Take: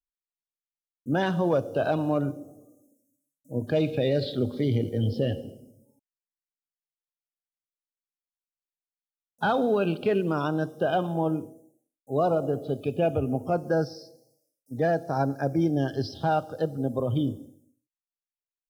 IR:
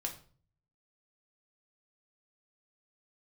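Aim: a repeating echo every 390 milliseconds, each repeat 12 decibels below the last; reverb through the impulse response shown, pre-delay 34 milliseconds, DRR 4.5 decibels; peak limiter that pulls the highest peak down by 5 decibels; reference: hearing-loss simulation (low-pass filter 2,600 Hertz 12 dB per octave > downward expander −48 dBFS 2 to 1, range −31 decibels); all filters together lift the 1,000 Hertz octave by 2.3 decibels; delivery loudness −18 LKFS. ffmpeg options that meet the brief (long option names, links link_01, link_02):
-filter_complex "[0:a]equalizer=frequency=1000:width_type=o:gain=3.5,alimiter=limit=-18.5dB:level=0:latency=1,aecho=1:1:390|780|1170:0.251|0.0628|0.0157,asplit=2[link_01][link_02];[1:a]atrim=start_sample=2205,adelay=34[link_03];[link_02][link_03]afir=irnorm=-1:irlink=0,volume=-5dB[link_04];[link_01][link_04]amix=inputs=2:normalize=0,lowpass=2600,agate=range=-31dB:threshold=-48dB:ratio=2,volume=10dB"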